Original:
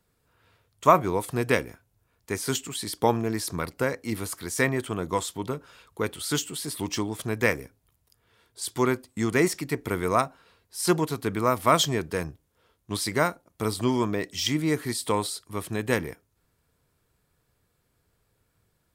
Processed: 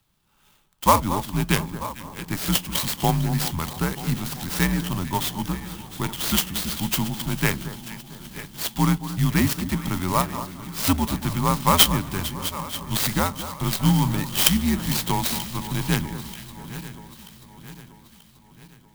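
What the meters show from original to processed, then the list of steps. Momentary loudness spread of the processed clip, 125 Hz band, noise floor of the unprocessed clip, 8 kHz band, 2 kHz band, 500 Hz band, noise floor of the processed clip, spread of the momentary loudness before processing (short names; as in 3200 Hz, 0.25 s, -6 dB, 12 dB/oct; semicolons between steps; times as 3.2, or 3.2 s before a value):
17 LU, +8.0 dB, -72 dBFS, +5.0 dB, +0.5 dB, -5.5 dB, -55 dBFS, 11 LU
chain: regenerating reverse delay 0.467 s, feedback 68%, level -14 dB; graphic EQ 250/500/1000/8000 Hz +12/-8/+6/-9 dB; frequency shift -84 Hz; band shelf 4500 Hz +15 dB; on a send: echo with dull and thin repeats by turns 0.225 s, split 1500 Hz, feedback 60%, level -12 dB; on the sum: clock jitter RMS 0.05 ms; gain -2 dB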